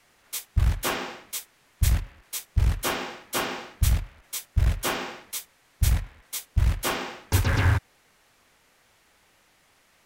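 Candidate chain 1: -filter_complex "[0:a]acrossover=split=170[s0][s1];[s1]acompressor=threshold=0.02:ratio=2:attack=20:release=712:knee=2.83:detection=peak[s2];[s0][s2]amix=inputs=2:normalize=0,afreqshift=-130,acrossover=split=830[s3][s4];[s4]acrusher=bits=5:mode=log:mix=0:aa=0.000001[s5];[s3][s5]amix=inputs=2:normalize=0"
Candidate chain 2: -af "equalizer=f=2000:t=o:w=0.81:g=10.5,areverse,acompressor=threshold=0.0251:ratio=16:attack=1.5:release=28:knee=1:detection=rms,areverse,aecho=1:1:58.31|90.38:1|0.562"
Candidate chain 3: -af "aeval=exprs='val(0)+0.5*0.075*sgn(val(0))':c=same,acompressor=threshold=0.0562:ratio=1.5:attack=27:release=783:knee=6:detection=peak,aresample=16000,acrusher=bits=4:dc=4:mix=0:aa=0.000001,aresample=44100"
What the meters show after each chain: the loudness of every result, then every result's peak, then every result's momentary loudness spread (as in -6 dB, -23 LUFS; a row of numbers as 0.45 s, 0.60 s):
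-29.5 LUFS, -34.5 LUFS, -29.0 LUFS; -9.0 dBFS, -21.5 dBFS, -8.5 dBFS; 12 LU, 20 LU, 8 LU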